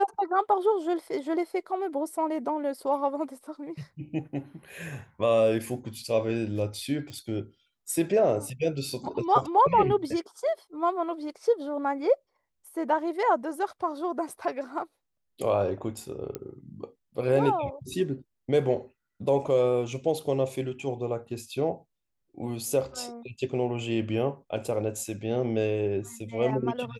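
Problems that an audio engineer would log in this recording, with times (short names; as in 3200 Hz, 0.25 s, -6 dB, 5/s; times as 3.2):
7.1 pop -27 dBFS
16.35 pop -17 dBFS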